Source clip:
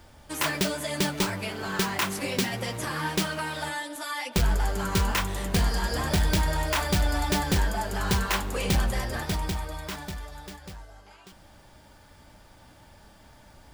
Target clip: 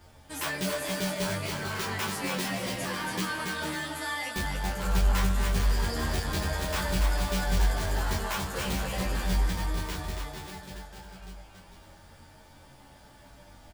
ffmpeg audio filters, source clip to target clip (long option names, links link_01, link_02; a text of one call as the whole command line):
ffmpeg -i in.wav -filter_complex "[0:a]asoftclip=type=tanh:threshold=-25dB,asplit=2[link_01][link_02];[link_02]adelay=22,volume=-5dB[link_03];[link_01][link_03]amix=inputs=2:normalize=0,aecho=1:1:280|448|548.8|609.3|645.6:0.631|0.398|0.251|0.158|0.1,asplit=2[link_04][link_05];[link_05]adelay=10.8,afreqshift=-0.48[link_06];[link_04][link_06]amix=inputs=2:normalize=1" out.wav